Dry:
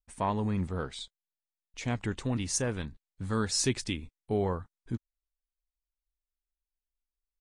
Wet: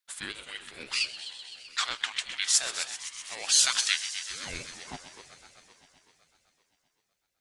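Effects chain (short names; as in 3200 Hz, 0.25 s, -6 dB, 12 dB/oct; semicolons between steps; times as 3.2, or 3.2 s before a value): bell 88 Hz +7 dB 2.4 oct; in parallel at +3 dB: limiter -25 dBFS, peak gain reduction 11 dB; on the sum: high-pass sweep 2700 Hz -> 530 Hz, 4.38–5.05; multi-head echo 0.128 s, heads first and second, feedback 70%, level -15 dB; ring modulator with a swept carrier 780 Hz, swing 40%, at 1.1 Hz; gain +4.5 dB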